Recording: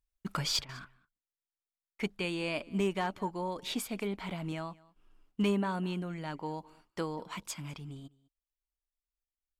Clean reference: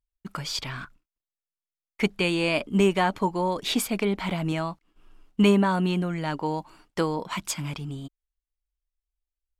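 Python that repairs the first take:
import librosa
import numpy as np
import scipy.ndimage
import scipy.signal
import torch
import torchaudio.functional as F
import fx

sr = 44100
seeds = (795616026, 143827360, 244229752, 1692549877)

y = fx.fix_declip(x, sr, threshold_db=-22.5)
y = fx.fix_interpolate(y, sr, at_s=(0.65,), length_ms=38.0)
y = fx.fix_echo_inverse(y, sr, delay_ms=203, level_db=-23.5)
y = fx.fix_level(y, sr, at_s=0.62, step_db=10.0)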